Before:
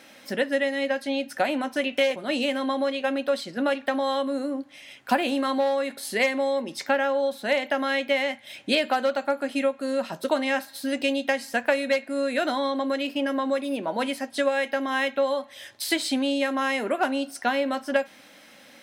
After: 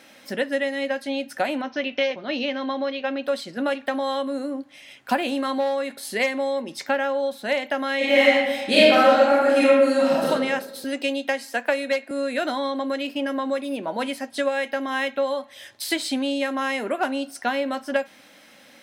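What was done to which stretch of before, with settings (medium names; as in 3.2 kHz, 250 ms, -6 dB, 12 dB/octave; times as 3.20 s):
1.61–3.24 s: elliptic low-pass 5.8 kHz
7.97–10.29 s: reverb throw, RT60 1.2 s, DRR -8 dB
10.84–12.11 s: steep high-pass 250 Hz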